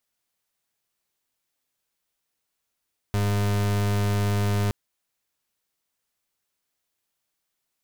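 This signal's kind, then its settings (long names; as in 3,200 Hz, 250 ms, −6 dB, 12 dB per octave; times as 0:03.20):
pulse wave 102 Hz, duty 37% −23 dBFS 1.57 s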